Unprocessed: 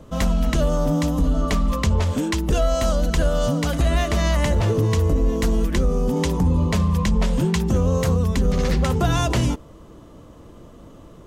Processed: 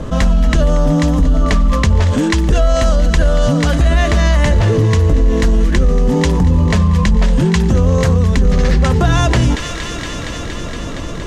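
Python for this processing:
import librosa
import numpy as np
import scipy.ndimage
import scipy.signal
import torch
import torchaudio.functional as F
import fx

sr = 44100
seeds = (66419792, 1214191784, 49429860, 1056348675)

y = scipy.signal.sosfilt(scipy.signal.butter(2, 8100.0, 'lowpass', fs=sr, output='sos'), x)
y = fx.low_shelf(y, sr, hz=78.0, db=6.5)
y = fx.quant_float(y, sr, bits=8)
y = fx.peak_eq(y, sr, hz=1700.0, db=5.5, octaves=0.29)
y = fx.echo_wet_highpass(y, sr, ms=233, feedback_pct=83, hz=1600.0, wet_db=-15)
y = fx.env_flatten(y, sr, amount_pct=50)
y = F.gain(torch.from_numpy(y), 2.5).numpy()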